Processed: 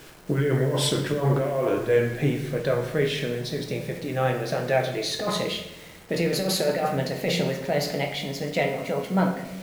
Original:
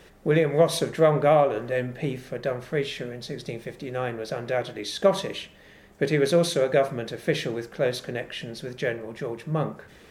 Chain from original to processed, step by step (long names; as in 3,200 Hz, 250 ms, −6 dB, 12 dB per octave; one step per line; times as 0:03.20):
gliding playback speed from 87% → 123%
compressor whose output falls as the input rises −24 dBFS, ratio −1
bit reduction 8 bits
convolution reverb RT60 0.90 s, pre-delay 6 ms, DRR 3 dB